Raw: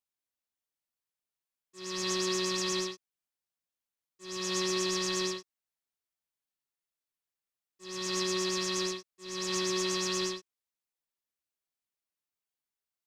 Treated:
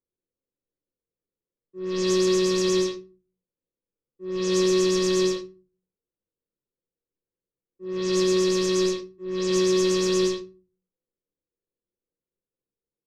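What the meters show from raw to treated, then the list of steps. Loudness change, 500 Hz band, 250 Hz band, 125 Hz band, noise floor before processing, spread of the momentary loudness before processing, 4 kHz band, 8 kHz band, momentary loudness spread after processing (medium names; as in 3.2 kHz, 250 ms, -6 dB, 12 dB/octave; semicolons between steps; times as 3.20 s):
+8.5 dB, +13.0 dB, +12.5 dB, no reading, under -85 dBFS, 12 LU, +2.5 dB, +2.5 dB, 12 LU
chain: level-controlled noise filter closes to 790 Hz, open at -28.5 dBFS; resonant low shelf 580 Hz +6.5 dB, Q 3; simulated room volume 150 m³, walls furnished, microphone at 0.84 m; trim +2 dB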